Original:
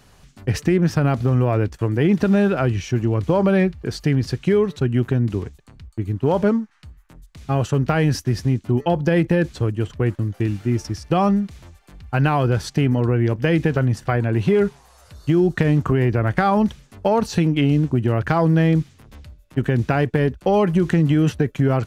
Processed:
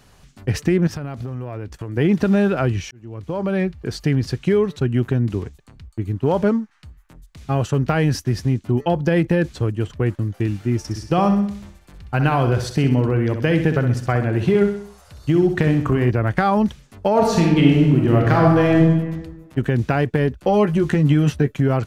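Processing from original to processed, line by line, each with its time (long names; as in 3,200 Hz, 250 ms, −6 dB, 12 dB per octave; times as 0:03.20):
0:00.87–0:01.97: downward compressor, threshold −25 dBFS
0:02.91–0:03.94: fade in
0:10.81–0:16.11: repeating echo 64 ms, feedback 47%, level −8.5 dB
0:17.11–0:18.77: thrown reverb, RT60 1.3 s, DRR −2 dB
0:20.38–0:21.54: double-tracking delay 14 ms −7 dB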